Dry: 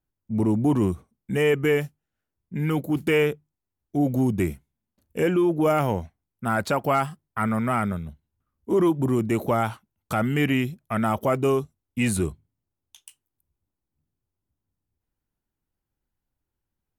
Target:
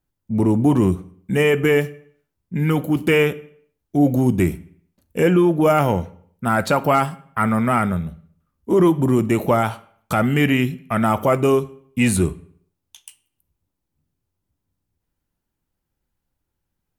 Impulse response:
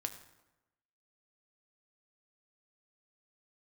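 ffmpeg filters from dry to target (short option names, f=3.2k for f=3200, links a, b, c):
-filter_complex "[0:a]asplit=2[a][b];[1:a]atrim=start_sample=2205,asetrate=74970,aresample=44100[c];[b][c]afir=irnorm=-1:irlink=0,volume=5dB[d];[a][d]amix=inputs=2:normalize=0"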